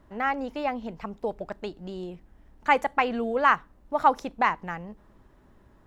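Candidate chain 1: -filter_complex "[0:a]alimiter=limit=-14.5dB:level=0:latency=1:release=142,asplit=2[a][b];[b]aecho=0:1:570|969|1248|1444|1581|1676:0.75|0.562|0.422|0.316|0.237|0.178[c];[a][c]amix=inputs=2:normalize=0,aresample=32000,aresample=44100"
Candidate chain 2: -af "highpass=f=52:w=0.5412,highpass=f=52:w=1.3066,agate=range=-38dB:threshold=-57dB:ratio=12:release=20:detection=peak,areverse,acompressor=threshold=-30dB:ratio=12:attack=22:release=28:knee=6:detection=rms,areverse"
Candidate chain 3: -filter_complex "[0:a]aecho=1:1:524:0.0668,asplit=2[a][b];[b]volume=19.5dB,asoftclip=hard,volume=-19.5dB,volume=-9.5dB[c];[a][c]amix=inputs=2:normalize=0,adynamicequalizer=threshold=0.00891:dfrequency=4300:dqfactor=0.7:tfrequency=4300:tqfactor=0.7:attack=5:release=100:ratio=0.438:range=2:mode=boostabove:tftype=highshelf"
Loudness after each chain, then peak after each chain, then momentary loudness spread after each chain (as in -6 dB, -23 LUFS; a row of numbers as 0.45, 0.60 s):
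-28.0, -34.5, -25.5 LUFS; -10.5, -18.0, -6.0 dBFS; 6, 8, 14 LU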